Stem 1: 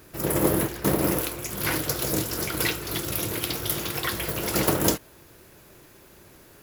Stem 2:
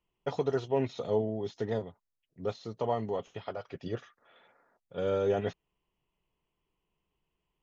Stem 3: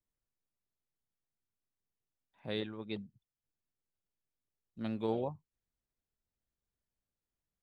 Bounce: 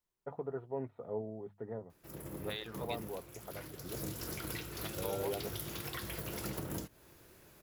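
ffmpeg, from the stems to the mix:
-filter_complex "[0:a]acrossover=split=240[a][b];[b]acompressor=threshold=-32dB:ratio=2.5[c];[a][c]amix=inputs=2:normalize=0,adelay=1900,volume=-8.5dB,afade=t=in:st=3.8:d=0.27:silence=0.334965[d];[1:a]lowpass=f=1.6k:w=0.5412,lowpass=f=1.6k:w=1.3066,bandreject=f=50:t=h:w=6,bandreject=f=100:t=h:w=6,bandreject=f=150:t=h:w=6,bandreject=f=200:t=h:w=6,volume=-10dB[e];[2:a]highpass=750,volume=2.5dB[f];[d][f]amix=inputs=2:normalize=0,acompressor=threshold=-36dB:ratio=6,volume=0dB[g];[e][g]amix=inputs=2:normalize=0"

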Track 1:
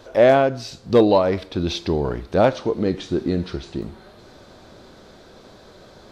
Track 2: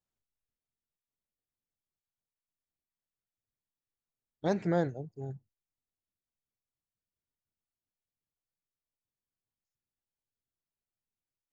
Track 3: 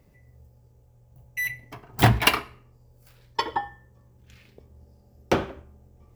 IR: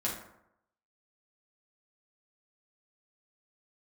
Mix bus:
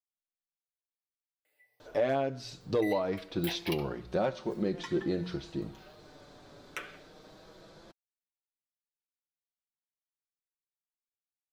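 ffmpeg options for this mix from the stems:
-filter_complex "[0:a]bandreject=f=60:t=h:w=6,bandreject=f=120:t=h:w=6,bandreject=f=180:t=h:w=6,adelay=1800,volume=-4.5dB[a];[1:a]volume=-19.5dB[b];[2:a]highpass=1.1k,acompressor=threshold=-34dB:ratio=3,asplit=2[c][d];[d]afreqshift=0.54[e];[c][e]amix=inputs=2:normalize=1,adelay=1450,volume=2dB[f];[a][b][f]amix=inputs=3:normalize=0,flanger=delay=5.3:depth=1.7:regen=-16:speed=0.23:shape=triangular,alimiter=limit=-19.5dB:level=0:latency=1:release=446"

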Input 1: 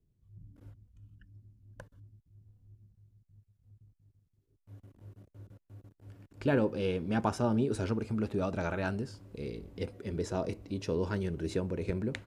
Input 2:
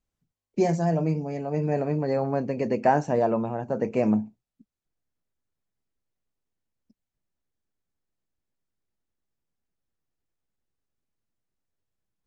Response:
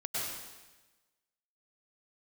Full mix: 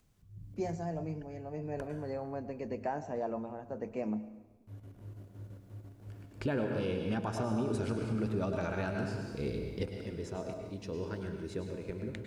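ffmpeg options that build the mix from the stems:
-filter_complex "[0:a]afade=t=out:st=9.83:d=0.36:silence=0.316228,asplit=2[a][b];[b]volume=-5dB[c];[1:a]highpass=f=140:w=0.5412,highpass=f=140:w=1.3066,acompressor=mode=upward:threshold=-45dB:ratio=2.5,volume=-13.5dB,asplit=2[d][e];[e]volume=-17.5dB[f];[2:a]atrim=start_sample=2205[g];[c][f]amix=inputs=2:normalize=0[h];[h][g]afir=irnorm=-1:irlink=0[i];[a][d][i]amix=inputs=3:normalize=0,alimiter=limit=-24dB:level=0:latency=1:release=335"

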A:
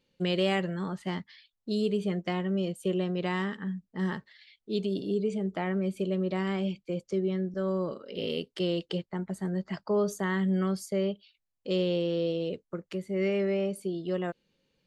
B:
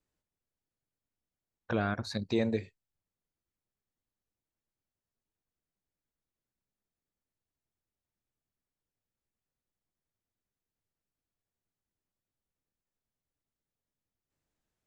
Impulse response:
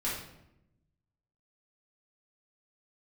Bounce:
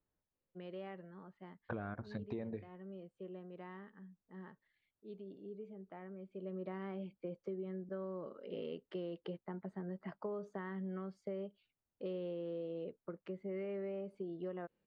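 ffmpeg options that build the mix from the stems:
-filter_complex "[0:a]highpass=f=230:p=1,adelay=350,volume=-5.5dB,afade=t=in:st=6.3:d=0.48:silence=0.251189[a];[1:a]volume=-1.5dB[b];[a][b]amix=inputs=2:normalize=0,lowpass=1.6k,acompressor=threshold=-39dB:ratio=6"

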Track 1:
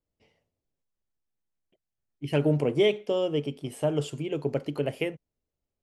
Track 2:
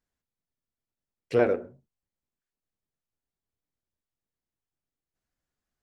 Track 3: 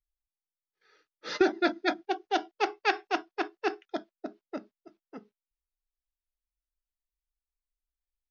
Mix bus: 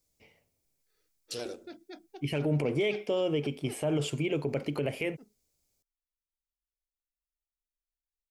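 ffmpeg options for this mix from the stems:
-filter_complex "[0:a]equalizer=f=2.3k:w=5.3:g=9,asoftclip=type=hard:threshold=-12.5dB,volume=3dB[a];[1:a]aexciter=amount=13.4:drive=9.7:freq=3.3k,volume=-17.5dB[b];[2:a]equalizer=f=1.3k:t=o:w=2.8:g=-14,acompressor=threshold=-38dB:ratio=3,adelay=50,volume=-6.5dB[c];[a][b][c]amix=inputs=3:normalize=0,alimiter=limit=-20.5dB:level=0:latency=1:release=49"

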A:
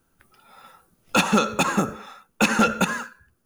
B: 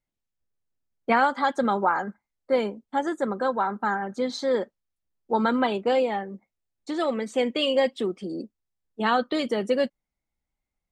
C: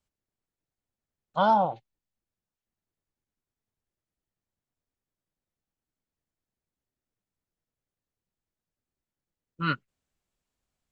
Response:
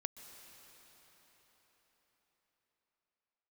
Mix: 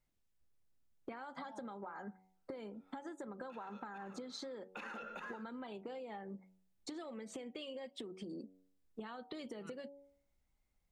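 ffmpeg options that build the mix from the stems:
-filter_complex "[0:a]acrossover=split=300 3500:gain=0.178 1 0.112[a][b][c];[a][b][c]amix=inputs=3:normalize=0,alimiter=limit=-21.5dB:level=0:latency=1:release=43,adelay=2350,volume=-10.5dB,afade=t=in:st=4.21:d=0.63:silence=0.281838[d];[1:a]acompressor=threshold=-33dB:ratio=2,volume=1dB,asplit=2[e][f];[2:a]volume=-13dB[g];[f]apad=whole_len=481335[h];[g][h]sidechaincompress=threshold=-35dB:ratio=8:attack=16:release=239[i];[e][i]amix=inputs=2:normalize=0,lowshelf=f=160:g=4.5,acompressor=threshold=-35dB:ratio=4,volume=0dB[j];[d][j]amix=inputs=2:normalize=0,bandreject=f=93.76:t=h:w=4,bandreject=f=187.52:t=h:w=4,bandreject=f=281.28:t=h:w=4,bandreject=f=375.04:t=h:w=4,bandreject=f=468.8:t=h:w=4,bandreject=f=562.56:t=h:w=4,bandreject=f=656.32:t=h:w=4,bandreject=f=750.08:t=h:w=4,bandreject=f=843.84:t=h:w=4,bandreject=f=937.6:t=h:w=4,acompressor=threshold=-44dB:ratio=6"

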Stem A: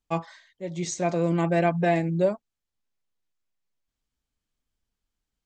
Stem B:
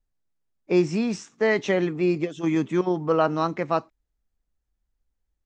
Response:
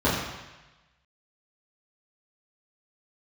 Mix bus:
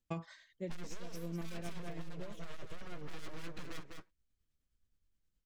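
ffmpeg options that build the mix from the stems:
-filter_complex "[0:a]lowshelf=f=180:g=8,volume=-4.5dB[a];[1:a]aeval=exprs='abs(val(0))':c=same,flanger=delay=5.7:depth=5.1:regen=-21:speed=1.7:shape=sinusoidal,asoftclip=type=hard:threshold=-27.5dB,volume=-2.5dB,asplit=3[b][c][d];[c]volume=-8dB[e];[d]apad=whole_len=240597[f];[a][f]sidechaincompress=threshold=-46dB:ratio=8:attack=16:release=563[g];[e]aecho=0:1:201:1[h];[g][b][h]amix=inputs=3:normalize=0,tremolo=f=9.5:d=0.41,equalizer=f=820:w=2.1:g=-7.5,acompressor=threshold=-36dB:ratio=6"

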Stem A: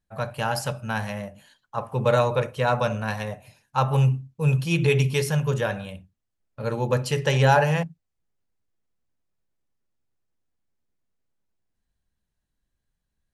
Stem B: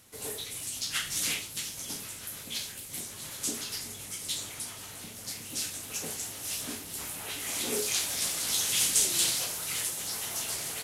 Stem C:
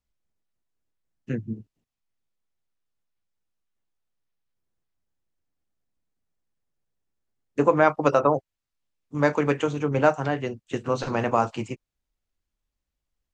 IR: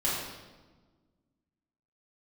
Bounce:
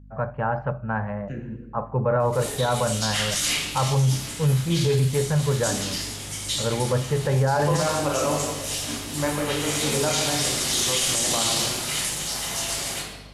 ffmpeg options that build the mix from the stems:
-filter_complex "[0:a]lowpass=f=1.6k:w=0.5412,lowpass=f=1.6k:w=1.3066,aeval=exprs='val(0)+0.00447*(sin(2*PI*50*n/s)+sin(2*PI*2*50*n/s)/2+sin(2*PI*3*50*n/s)/3+sin(2*PI*4*50*n/s)/4+sin(2*PI*5*50*n/s)/5)':c=same,volume=2dB[a];[1:a]lowpass=9.5k,adelay=2200,volume=2dB,asplit=2[b][c];[c]volume=-4.5dB[d];[2:a]volume=-9dB,asplit=2[e][f];[f]volume=-6.5dB[g];[3:a]atrim=start_sample=2205[h];[d][g]amix=inputs=2:normalize=0[i];[i][h]afir=irnorm=-1:irlink=0[j];[a][b][e][j]amix=inputs=4:normalize=0,alimiter=limit=-13.5dB:level=0:latency=1:release=14"

